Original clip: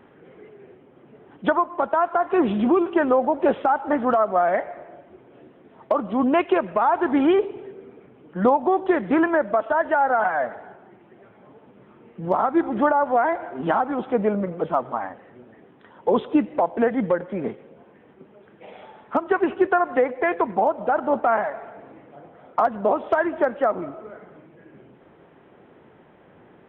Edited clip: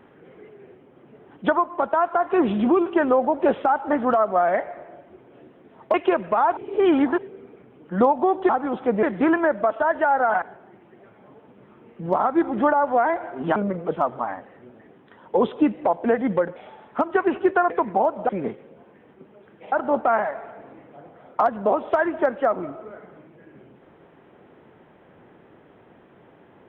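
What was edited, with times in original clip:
5.94–6.38 s: delete
7.01–7.62 s: reverse
10.32–10.61 s: delete
13.75–14.29 s: move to 8.93 s
17.29–18.72 s: move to 20.91 s
19.86–20.32 s: delete

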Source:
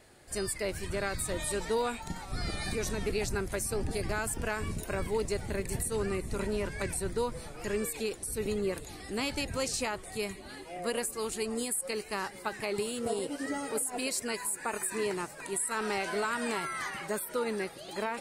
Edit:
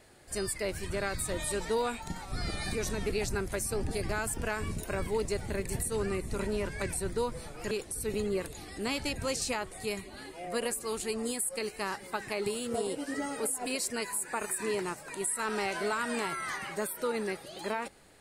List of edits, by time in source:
7.71–8.03 s: delete

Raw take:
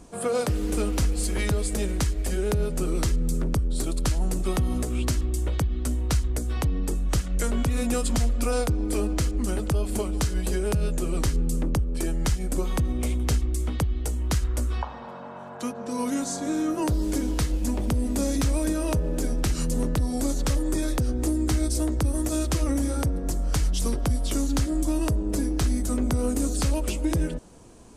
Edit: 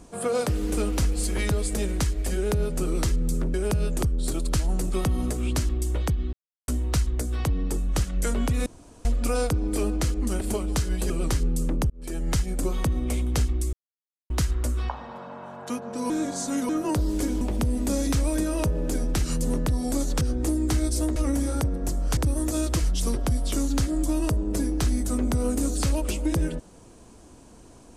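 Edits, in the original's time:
5.85 s: insert silence 0.35 s
7.83–8.22 s: room tone
9.58–9.86 s: delete
10.55–11.03 s: move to 3.54 s
11.83–12.22 s: fade in
13.66–14.23 s: mute
16.03–16.62 s: reverse
17.34–17.70 s: delete
20.50–21.00 s: delete
21.95–22.58 s: move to 23.59 s

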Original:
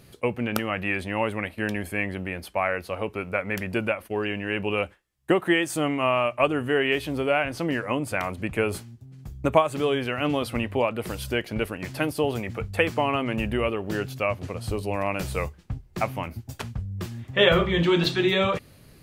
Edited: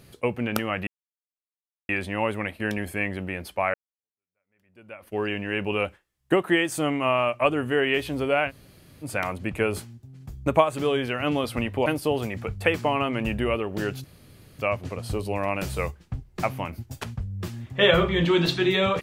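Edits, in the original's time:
0.87 s: insert silence 1.02 s
2.72–4.13 s: fade in exponential
7.47–8.02 s: room tone, crossfade 0.06 s
10.84–11.99 s: delete
14.17 s: insert room tone 0.55 s

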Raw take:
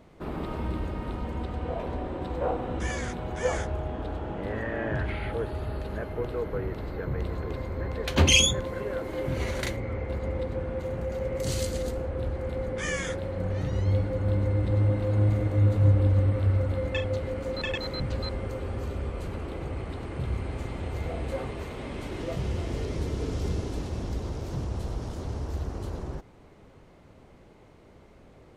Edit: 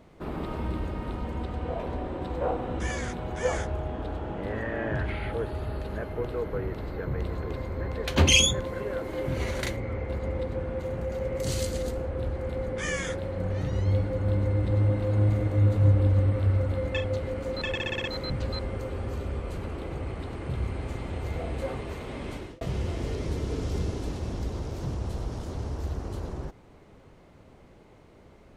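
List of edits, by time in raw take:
17.74 s: stutter 0.06 s, 6 plays
22.03–22.31 s: fade out

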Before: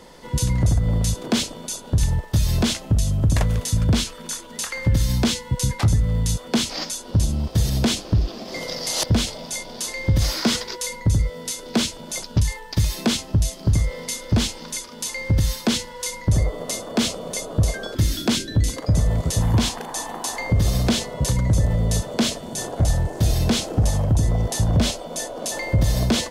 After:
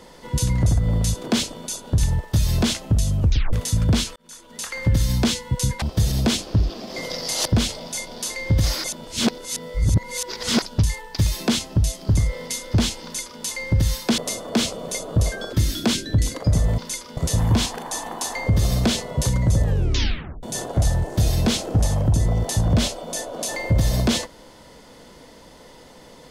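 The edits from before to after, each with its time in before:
3.20 s: tape stop 0.33 s
4.16–4.83 s: fade in
5.82–7.40 s: delete
10.42–12.20 s: reverse
14.61–15.00 s: copy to 19.20 s
15.76–16.60 s: delete
21.66 s: tape stop 0.80 s

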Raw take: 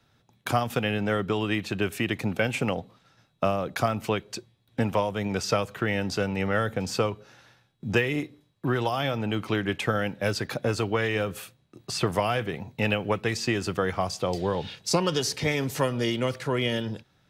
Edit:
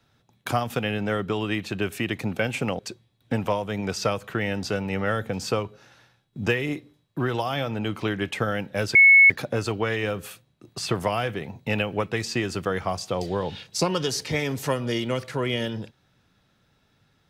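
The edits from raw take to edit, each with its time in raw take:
2.79–4.26 s: delete
10.42 s: add tone 2.2 kHz -9.5 dBFS 0.35 s

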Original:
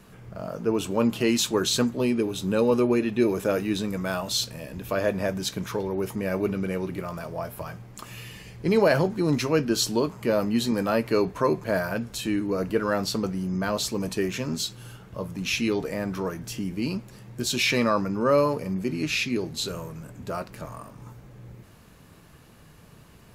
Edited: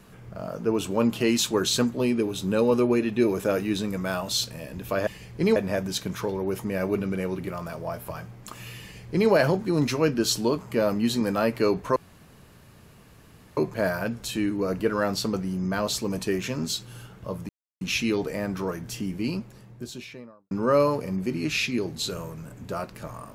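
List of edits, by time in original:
8.32–8.81 s: copy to 5.07 s
11.47 s: insert room tone 1.61 s
15.39 s: insert silence 0.32 s
16.74–18.09 s: studio fade out

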